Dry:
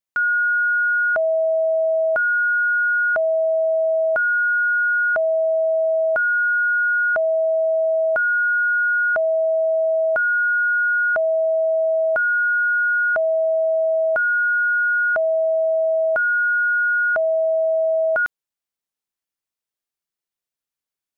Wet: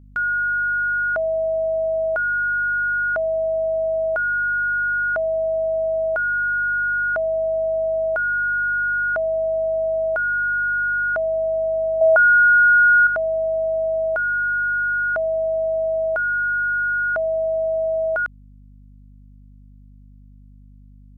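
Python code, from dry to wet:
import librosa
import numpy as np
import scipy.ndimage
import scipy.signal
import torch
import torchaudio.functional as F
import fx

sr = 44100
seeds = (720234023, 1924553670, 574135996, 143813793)

y = fx.add_hum(x, sr, base_hz=50, snr_db=24)
y = fx.band_shelf(y, sr, hz=980.0, db=8.5, octaves=1.7, at=(12.01, 13.07))
y = y * librosa.db_to_amplitude(-2.5)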